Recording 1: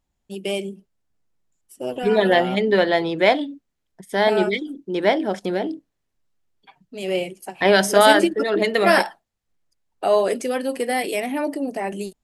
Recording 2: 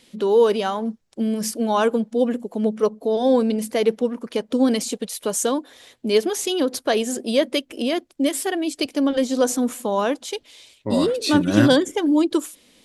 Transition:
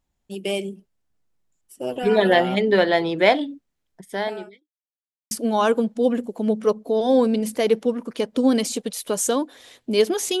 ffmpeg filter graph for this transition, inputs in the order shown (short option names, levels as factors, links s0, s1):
-filter_complex "[0:a]apad=whole_dur=10.4,atrim=end=10.4,asplit=2[s0][s1];[s0]atrim=end=4.69,asetpts=PTS-STARTPTS,afade=t=out:st=3.98:d=0.71:c=qua[s2];[s1]atrim=start=4.69:end=5.31,asetpts=PTS-STARTPTS,volume=0[s3];[1:a]atrim=start=1.47:end=6.56,asetpts=PTS-STARTPTS,afade=t=in:d=0.004:c=hsin[s4];[s2][s3][s4]concat=n=3:v=0:a=1"